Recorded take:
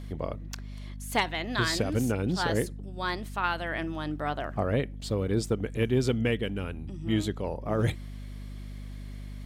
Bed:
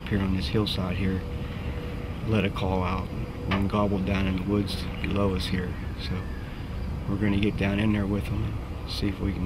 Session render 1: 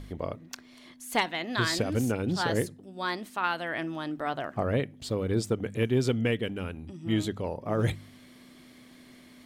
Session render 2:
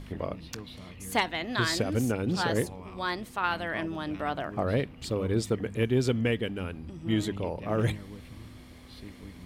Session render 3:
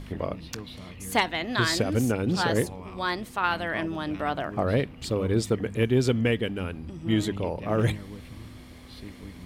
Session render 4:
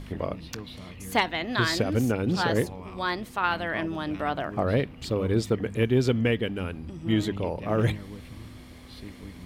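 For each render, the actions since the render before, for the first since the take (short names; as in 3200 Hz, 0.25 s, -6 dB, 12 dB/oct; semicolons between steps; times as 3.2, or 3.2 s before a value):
de-hum 50 Hz, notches 4
add bed -18 dB
gain +3 dB
dynamic EQ 8800 Hz, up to -6 dB, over -50 dBFS, Q 1.1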